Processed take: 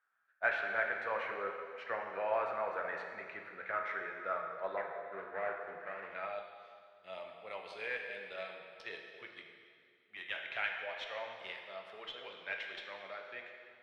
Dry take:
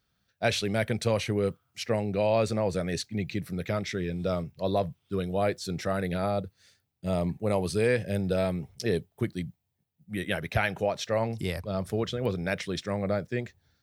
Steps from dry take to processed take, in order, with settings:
0:04.77–0:06.15: running median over 41 samples
flanger 0.15 Hz, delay 2.6 ms, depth 5 ms, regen −80%
dense smooth reverb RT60 2.3 s, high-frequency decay 0.9×, DRR 1.5 dB
band-pass filter sweep 1,500 Hz → 3,200 Hz, 0:05.85–0:06.47
harmonic generator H 8 −31 dB, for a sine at −23.5 dBFS
three-way crossover with the lows and the highs turned down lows −13 dB, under 410 Hz, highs −22 dB, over 2,300 Hz
level +9 dB

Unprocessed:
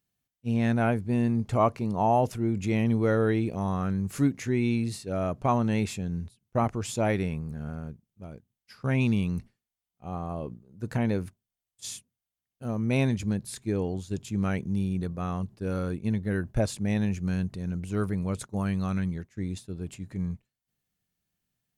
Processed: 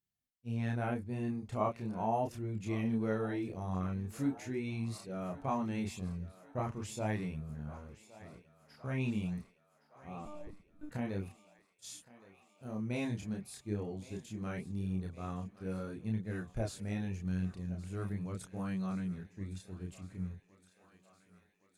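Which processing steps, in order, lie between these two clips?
multi-voice chorus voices 2, 0.4 Hz, delay 30 ms, depth 3.3 ms
0:10.25–0:10.92: one-pitch LPC vocoder at 8 kHz 300 Hz
feedback echo with a high-pass in the loop 1,115 ms, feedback 70%, high-pass 380 Hz, level −17 dB
level −7 dB

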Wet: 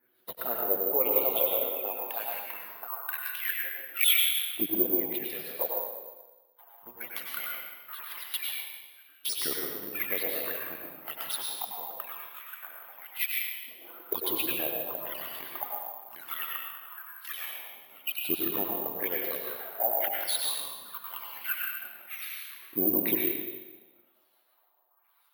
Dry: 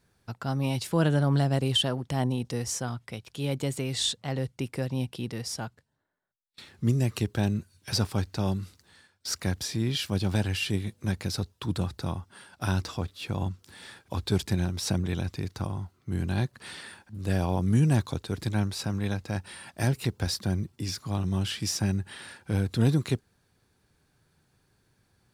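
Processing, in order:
pitch shifter swept by a sawtooth −7.5 semitones, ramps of 404 ms
harmonic and percussive parts rebalanced harmonic −12 dB
auto-filter low-pass sine 1 Hz 600–4,500 Hz
brickwall limiter −21.5 dBFS, peak gain reduction 8 dB
flanger swept by the level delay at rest 8.3 ms, full sweep at −29.5 dBFS
auto-filter high-pass saw up 0.22 Hz 310–2,700 Hz
dense smooth reverb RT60 1.2 s, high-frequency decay 1×, pre-delay 85 ms, DRR −1.5 dB
bad sample-rate conversion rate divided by 3×, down none, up zero stuff

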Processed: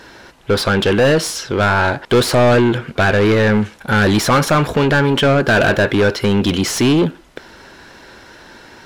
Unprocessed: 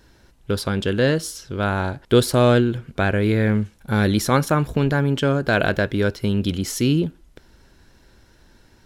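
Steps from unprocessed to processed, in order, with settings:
in parallel at −8 dB: soft clipping −16.5 dBFS, distortion −10 dB
on the sum: mid-hump overdrive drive 27 dB, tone 2,400 Hz, clips at −2 dBFS
level −2.5 dB

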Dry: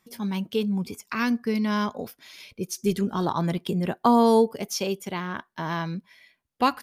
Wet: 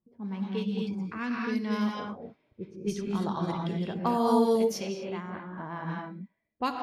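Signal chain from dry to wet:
reverb whose tail is shaped and stops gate 280 ms rising, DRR −0.5 dB
low-pass that shuts in the quiet parts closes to 410 Hz, open at −15.5 dBFS
level −8.5 dB

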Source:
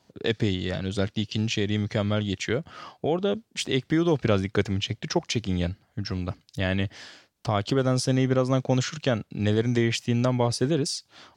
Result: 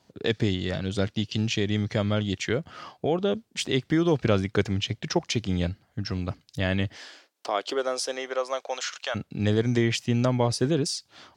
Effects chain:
0:06.96–0:09.14: high-pass filter 270 Hz → 700 Hz 24 dB per octave

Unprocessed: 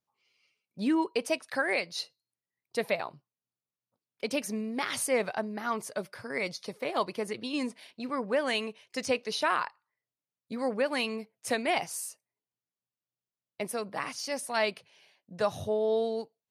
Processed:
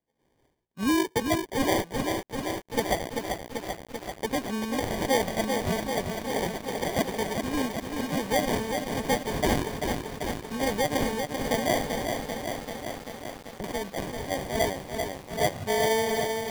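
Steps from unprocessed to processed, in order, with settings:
decimation without filtering 33×
0:12.04–0:13.64: treble cut that deepens with the level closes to 310 Hz, closed at −39.5 dBFS
feedback echo at a low word length 389 ms, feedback 80%, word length 8 bits, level −5 dB
level +2.5 dB

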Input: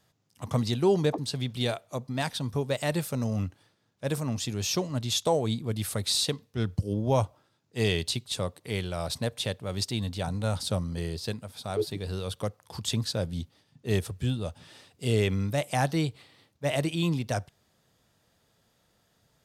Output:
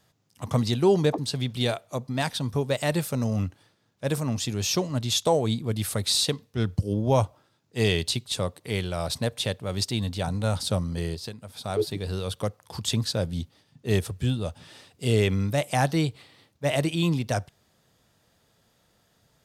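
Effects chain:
0:11.14–0:11.61: downward compressor 5 to 1, threshold −37 dBFS, peak gain reduction 10 dB
level +3 dB

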